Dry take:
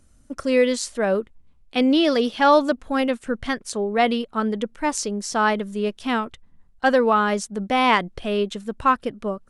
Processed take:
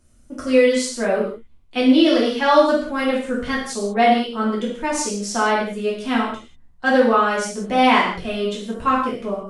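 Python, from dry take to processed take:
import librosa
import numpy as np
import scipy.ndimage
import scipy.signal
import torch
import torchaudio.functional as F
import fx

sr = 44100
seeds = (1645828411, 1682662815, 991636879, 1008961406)

y = fx.rev_gated(x, sr, seeds[0], gate_ms=220, shape='falling', drr_db=-6.0)
y = y * 10.0 ** (-4.5 / 20.0)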